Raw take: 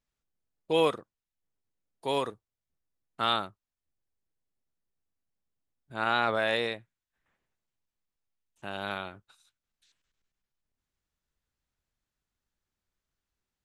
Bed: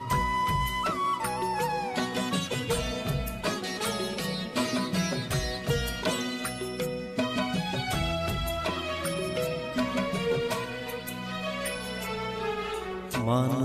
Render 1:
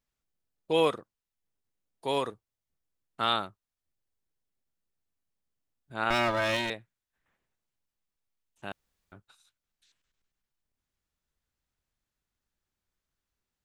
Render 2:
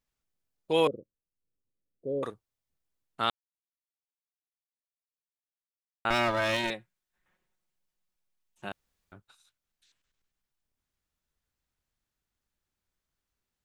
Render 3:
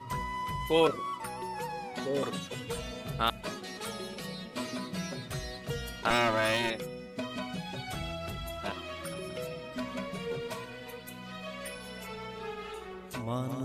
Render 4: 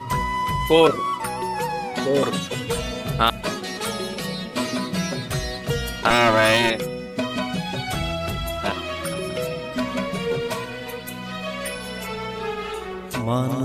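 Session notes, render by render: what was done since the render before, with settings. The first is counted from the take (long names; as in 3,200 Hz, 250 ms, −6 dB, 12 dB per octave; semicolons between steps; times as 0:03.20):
0:06.10–0:06.70: lower of the sound and its delayed copy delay 3.2 ms; 0:08.72–0:09.12: fill with room tone
0:00.87–0:02.23: elliptic low-pass filter 550 Hz; 0:03.30–0:06.05: silence; 0:06.63–0:08.69: comb filter 5.5 ms, depth 57%
mix in bed −8.5 dB
level +11.5 dB; brickwall limiter −3 dBFS, peak gain reduction 3 dB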